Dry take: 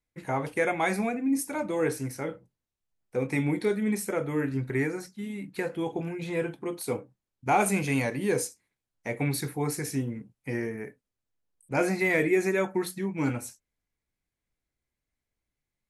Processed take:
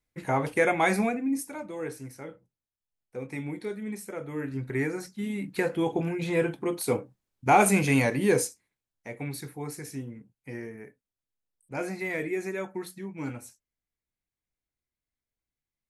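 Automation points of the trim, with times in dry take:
1.02 s +3 dB
1.66 s -8 dB
4.12 s -8 dB
5.28 s +4 dB
8.31 s +4 dB
9.10 s -7 dB

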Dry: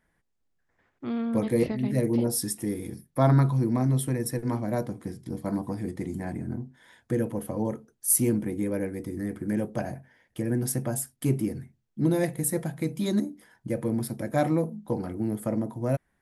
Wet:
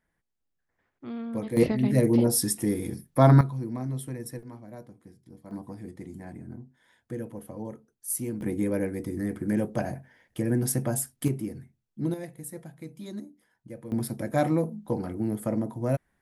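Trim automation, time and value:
-6 dB
from 1.57 s +3.5 dB
from 3.41 s -8 dB
from 4.43 s -15.5 dB
from 5.51 s -8.5 dB
from 8.41 s +1.5 dB
from 11.28 s -5 dB
from 12.14 s -12.5 dB
from 13.92 s 0 dB

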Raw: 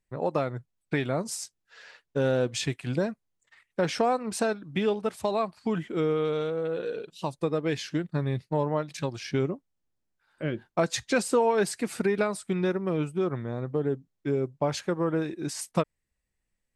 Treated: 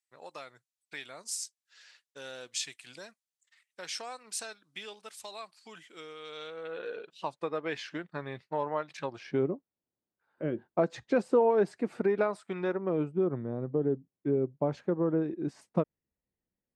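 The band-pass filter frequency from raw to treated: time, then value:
band-pass filter, Q 0.66
6.19 s 7.2 kHz
6.89 s 1.4 kHz
8.94 s 1.4 kHz
9.46 s 410 Hz
11.87 s 410 Hz
12.56 s 1.1 kHz
13.19 s 300 Hz

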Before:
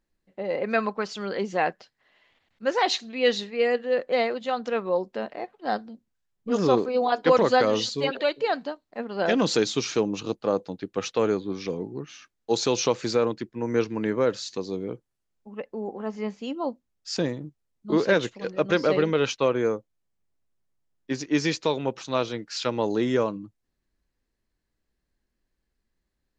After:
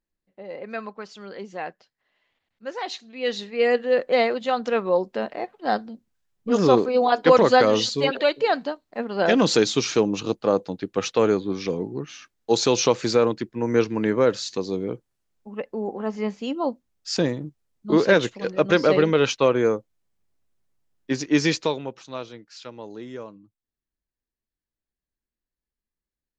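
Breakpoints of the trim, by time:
3.05 s -8 dB
3.70 s +4 dB
21.58 s +4 dB
21.88 s -5.5 dB
22.75 s -13 dB

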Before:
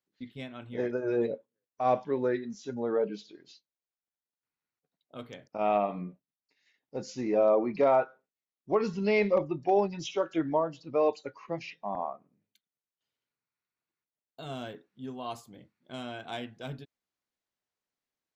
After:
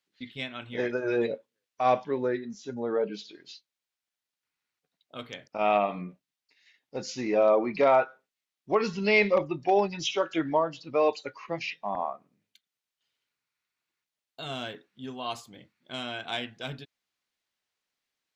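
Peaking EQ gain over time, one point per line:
peaking EQ 3.1 kHz 2.8 oct
1.81 s +11.5 dB
2.28 s +1.5 dB
2.81 s +1.5 dB
3.31 s +9.5 dB

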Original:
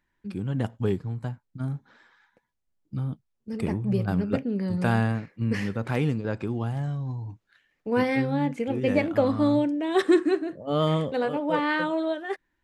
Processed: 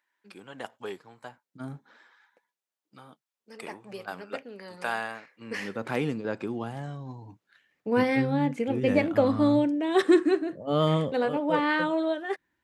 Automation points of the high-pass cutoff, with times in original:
1.20 s 670 Hz
1.72 s 240 Hz
2.97 s 720 Hz
5.31 s 720 Hz
5.86 s 230 Hz
7.21 s 230 Hz
7.89 s 85 Hz

